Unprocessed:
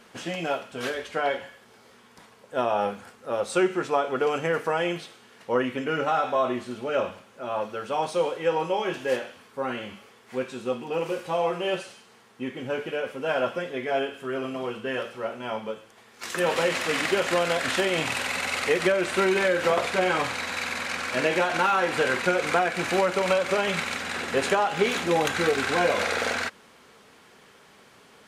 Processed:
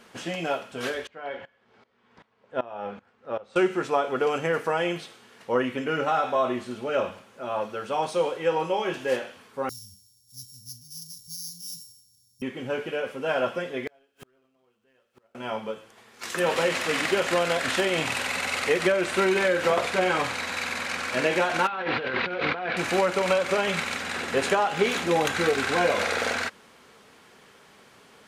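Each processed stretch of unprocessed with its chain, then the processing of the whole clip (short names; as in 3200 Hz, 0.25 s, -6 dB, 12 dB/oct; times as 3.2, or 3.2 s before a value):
1.07–3.56 LPF 3200 Hz + dB-ramp tremolo swelling 2.6 Hz, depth 20 dB
9.69–12.42 sample sorter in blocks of 8 samples + inverse Chebyshev band-stop 420–1700 Hz, stop band 70 dB + bell 410 Hz +6 dB 1.1 oct
13.87–15.35 zero-crossing step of -35 dBFS + flipped gate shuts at -28 dBFS, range -38 dB + sample leveller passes 1
21.67–22.77 steep low-pass 4300 Hz + negative-ratio compressor -29 dBFS
whole clip: dry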